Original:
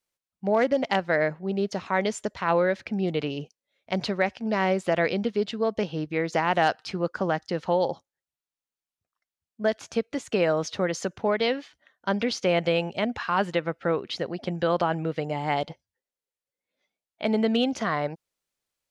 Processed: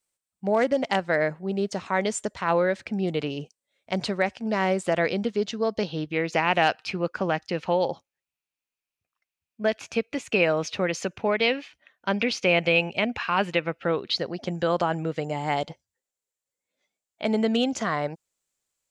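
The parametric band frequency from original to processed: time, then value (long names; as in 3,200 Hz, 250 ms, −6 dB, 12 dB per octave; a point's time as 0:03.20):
parametric band +11.5 dB 0.39 octaves
0:05.26 8,200 Hz
0:06.31 2,500 Hz
0:13.74 2,500 Hz
0:14.54 7,400 Hz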